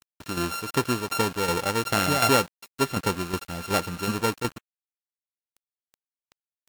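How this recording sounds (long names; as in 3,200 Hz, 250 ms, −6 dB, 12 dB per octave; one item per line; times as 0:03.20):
a buzz of ramps at a fixed pitch in blocks of 32 samples
tremolo saw down 2.7 Hz, depth 65%
a quantiser's noise floor 8 bits, dither none
Ogg Vorbis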